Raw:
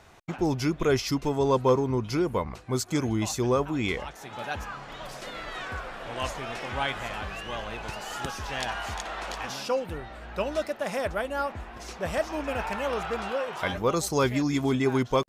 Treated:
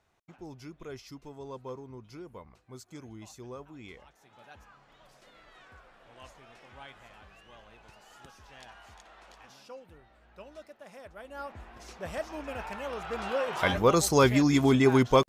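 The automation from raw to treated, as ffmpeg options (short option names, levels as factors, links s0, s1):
-af "volume=1.41,afade=t=in:st=11.14:d=0.49:silence=0.266073,afade=t=in:st=13.01:d=0.66:silence=0.298538"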